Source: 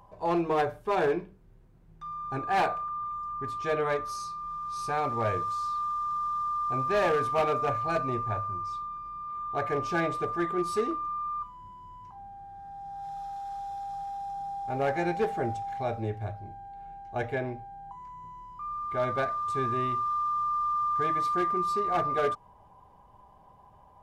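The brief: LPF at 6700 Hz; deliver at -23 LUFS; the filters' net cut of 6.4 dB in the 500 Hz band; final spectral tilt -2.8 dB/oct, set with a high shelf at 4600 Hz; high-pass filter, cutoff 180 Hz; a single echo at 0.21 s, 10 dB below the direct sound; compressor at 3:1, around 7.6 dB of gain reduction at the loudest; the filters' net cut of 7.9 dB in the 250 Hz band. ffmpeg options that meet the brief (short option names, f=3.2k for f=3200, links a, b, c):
-af "highpass=180,lowpass=6.7k,equalizer=f=250:t=o:g=-8,equalizer=f=500:t=o:g=-6,highshelf=f=4.6k:g=3.5,acompressor=threshold=-35dB:ratio=3,aecho=1:1:210:0.316,volume=12dB"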